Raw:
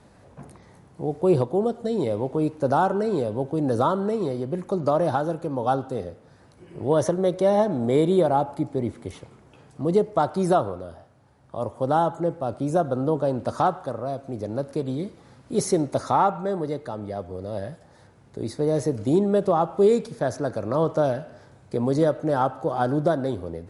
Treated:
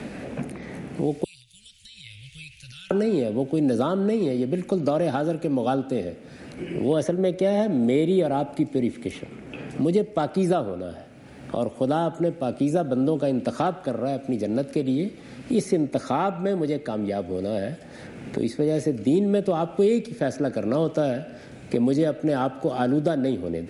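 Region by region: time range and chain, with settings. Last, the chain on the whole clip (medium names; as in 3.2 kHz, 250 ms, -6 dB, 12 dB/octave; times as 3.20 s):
1.24–2.91 s: inverse Chebyshev band-stop 240–1100 Hz, stop band 60 dB + bass shelf 230 Hz -12 dB + compression 5:1, threshold -54 dBFS
whole clip: fifteen-band graphic EQ 100 Hz -7 dB, 250 Hz +6 dB, 1 kHz -11 dB, 2.5 kHz +9 dB; three bands compressed up and down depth 70%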